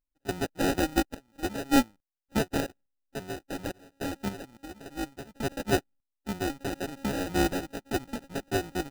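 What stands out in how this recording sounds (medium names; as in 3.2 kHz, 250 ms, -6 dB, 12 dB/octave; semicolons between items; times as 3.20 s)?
a buzz of ramps at a fixed pitch in blocks of 32 samples; random-step tremolo 3.5 Hz, depth 95%; aliases and images of a low sample rate 1.1 kHz, jitter 0%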